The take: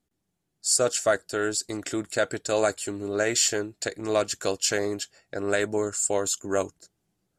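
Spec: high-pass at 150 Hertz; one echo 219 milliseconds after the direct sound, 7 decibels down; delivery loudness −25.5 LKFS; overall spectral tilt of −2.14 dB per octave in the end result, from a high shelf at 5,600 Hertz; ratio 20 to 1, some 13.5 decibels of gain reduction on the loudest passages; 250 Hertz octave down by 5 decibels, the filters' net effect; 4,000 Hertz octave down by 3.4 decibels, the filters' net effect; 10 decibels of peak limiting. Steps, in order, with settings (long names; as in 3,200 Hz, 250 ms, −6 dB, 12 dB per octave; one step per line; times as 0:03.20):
high-pass filter 150 Hz
parametric band 250 Hz −7 dB
parametric band 4,000 Hz −9 dB
high-shelf EQ 5,600 Hz +8 dB
downward compressor 20 to 1, threshold −28 dBFS
brickwall limiter −26.5 dBFS
single-tap delay 219 ms −7 dB
level +11 dB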